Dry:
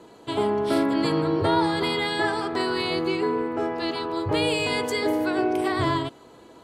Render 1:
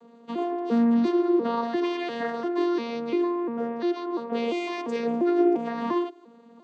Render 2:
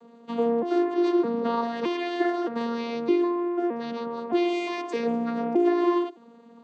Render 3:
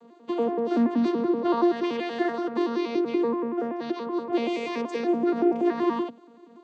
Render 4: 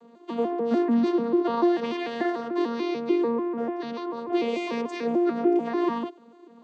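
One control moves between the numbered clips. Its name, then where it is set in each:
arpeggiated vocoder, a note every: 347, 616, 95, 147 ms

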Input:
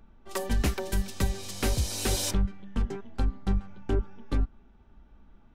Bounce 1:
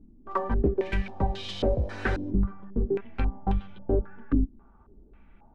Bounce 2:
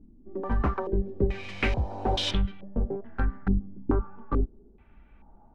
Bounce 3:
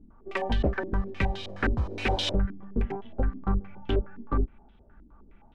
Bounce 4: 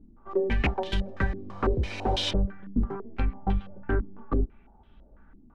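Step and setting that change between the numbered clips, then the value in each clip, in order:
stepped low-pass, rate: 3.7, 2.3, 9.6, 6 Hz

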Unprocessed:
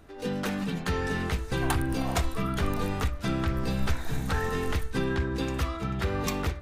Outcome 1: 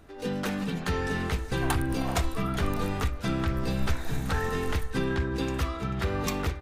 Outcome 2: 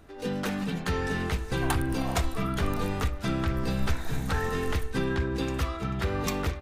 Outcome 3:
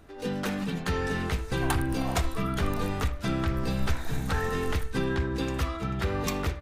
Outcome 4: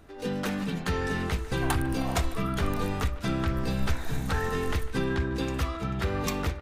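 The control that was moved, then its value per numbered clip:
speakerphone echo, time: 380, 250, 80, 150 ms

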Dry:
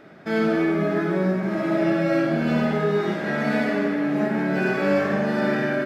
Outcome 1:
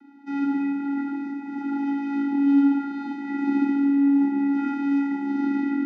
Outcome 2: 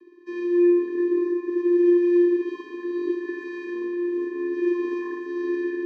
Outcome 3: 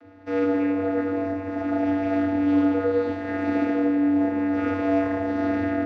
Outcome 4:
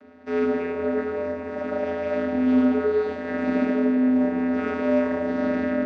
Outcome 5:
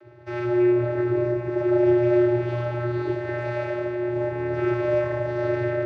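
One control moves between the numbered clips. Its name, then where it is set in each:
vocoder, frequency: 280, 350, 96, 85, 120 Hz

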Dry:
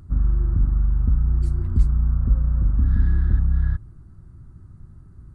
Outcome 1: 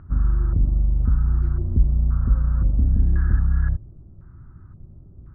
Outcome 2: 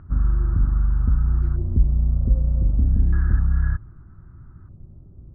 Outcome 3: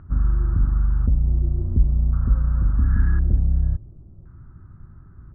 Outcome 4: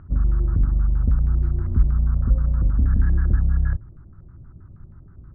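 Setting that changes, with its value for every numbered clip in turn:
LFO low-pass, rate: 0.95, 0.32, 0.47, 6.3 Hz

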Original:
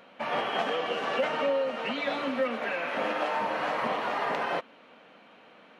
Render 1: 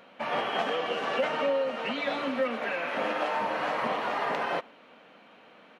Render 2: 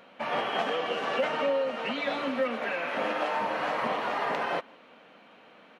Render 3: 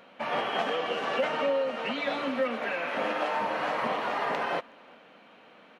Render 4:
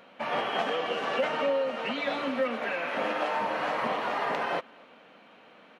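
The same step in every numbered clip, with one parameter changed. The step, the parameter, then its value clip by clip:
speakerphone echo, time: 0.11, 0.17, 0.37, 0.25 s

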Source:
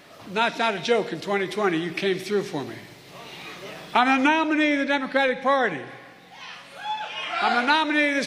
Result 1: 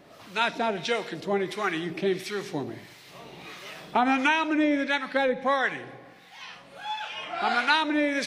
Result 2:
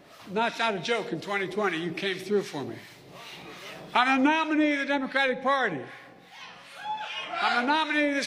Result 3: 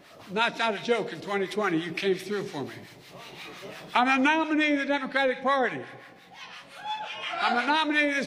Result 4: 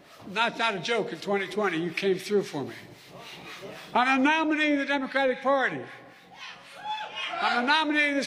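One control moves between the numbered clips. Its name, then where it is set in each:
harmonic tremolo, rate: 1.5, 2.6, 5.7, 3.8 Hz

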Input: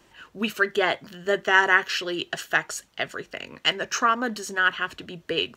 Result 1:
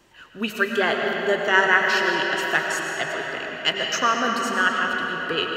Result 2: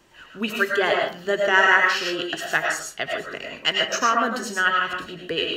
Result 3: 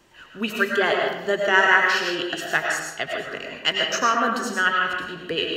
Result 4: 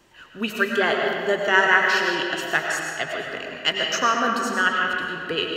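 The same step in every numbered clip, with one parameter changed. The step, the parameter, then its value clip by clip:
digital reverb, RT60: 5.1, 0.4, 0.96, 2.3 s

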